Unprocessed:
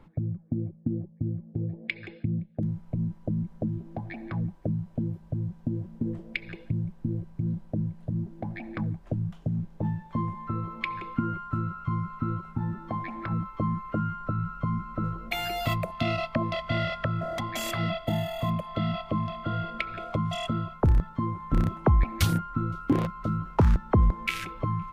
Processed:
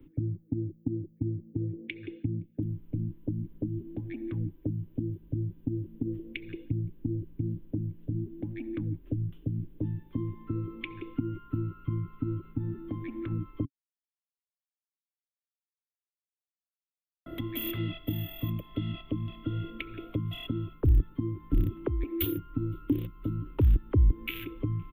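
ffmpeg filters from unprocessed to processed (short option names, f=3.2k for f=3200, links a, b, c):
-filter_complex "[0:a]asplit=3[a][b][c];[a]afade=t=out:st=21.87:d=0.02[d];[b]lowshelf=f=260:t=q:w=3:g=-9.5,afade=t=in:st=21.87:d=0.02,afade=t=out:st=22.36:d=0.02[e];[c]afade=t=in:st=22.36:d=0.02[f];[d][e][f]amix=inputs=3:normalize=0,asplit=3[g][h][i];[g]atrim=end=13.65,asetpts=PTS-STARTPTS,afade=t=out:st=13.646:d=0.004:c=hsin[j];[h]atrim=start=13.65:end=17.26,asetpts=PTS-STARTPTS,volume=0[k];[i]atrim=start=17.26,asetpts=PTS-STARTPTS,afade=t=in:d=0.004:c=hsin[l];[j][k][l]concat=n=3:v=0:a=1,firequalizer=gain_entry='entry(130,0);entry(190,-12);entry(280,11);entry(680,-21);entry(1100,-16);entry(2900,-3);entry(4900,-28);entry(7800,-25);entry(14000,12)':delay=0.05:min_phase=1,acrossover=split=130|3000[m][n][o];[n]acompressor=threshold=-32dB:ratio=2.5[p];[m][p][o]amix=inputs=3:normalize=0,equalizer=f=3.5k:w=6.9:g=6"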